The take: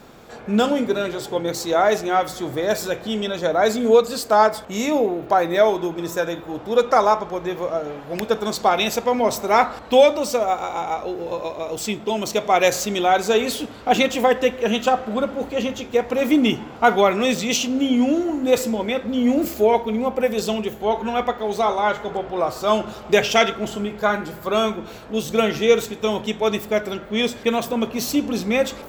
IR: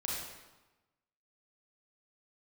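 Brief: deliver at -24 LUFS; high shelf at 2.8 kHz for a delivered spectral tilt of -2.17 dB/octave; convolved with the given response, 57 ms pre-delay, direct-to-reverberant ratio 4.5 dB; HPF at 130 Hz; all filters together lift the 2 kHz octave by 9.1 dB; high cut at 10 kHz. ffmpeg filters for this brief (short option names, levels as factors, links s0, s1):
-filter_complex "[0:a]highpass=130,lowpass=10000,equalizer=f=2000:t=o:g=8,highshelf=f=2800:g=8.5,asplit=2[s0][s1];[1:a]atrim=start_sample=2205,adelay=57[s2];[s1][s2]afir=irnorm=-1:irlink=0,volume=0.422[s3];[s0][s3]amix=inputs=2:normalize=0,volume=0.422"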